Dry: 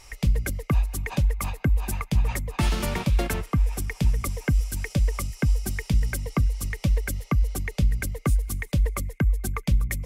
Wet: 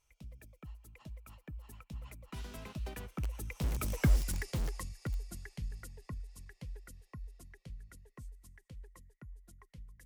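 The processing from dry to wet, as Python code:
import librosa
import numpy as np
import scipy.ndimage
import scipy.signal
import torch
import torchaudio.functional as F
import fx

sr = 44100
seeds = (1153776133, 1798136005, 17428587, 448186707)

p1 = fx.doppler_pass(x, sr, speed_mps=35, closest_m=7.0, pass_at_s=4.09)
p2 = (np.mod(10.0 ** (27.5 / 20.0) * p1 + 1.0, 2.0) - 1.0) / 10.0 ** (27.5 / 20.0)
p3 = p1 + F.gain(torch.from_numpy(p2), -7.5).numpy()
y = F.gain(torch.from_numpy(p3), -4.5).numpy()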